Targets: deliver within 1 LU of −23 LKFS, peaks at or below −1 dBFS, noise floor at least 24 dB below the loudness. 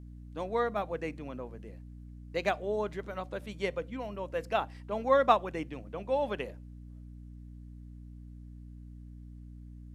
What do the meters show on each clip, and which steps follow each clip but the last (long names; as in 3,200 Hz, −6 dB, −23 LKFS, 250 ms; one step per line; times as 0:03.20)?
mains hum 60 Hz; hum harmonics up to 300 Hz; level of the hum −44 dBFS; integrated loudness −33.0 LKFS; sample peak −10.5 dBFS; target loudness −23.0 LKFS
→ mains-hum notches 60/120/180/240/300 Hz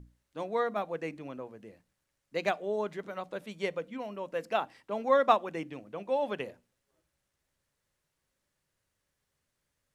mains hum none found; integrated loudness −33.0 LKFS; sample peak −10.0 dBFS; target loudness −23.0 LKFS
→ level +10 dB
brickwall limiter −1 dBFS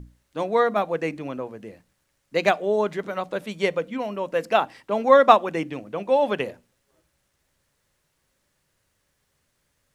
integrated loudness −23.0 LKFS; sample peak −1.0 dBFS; background noise floor −72 dBFS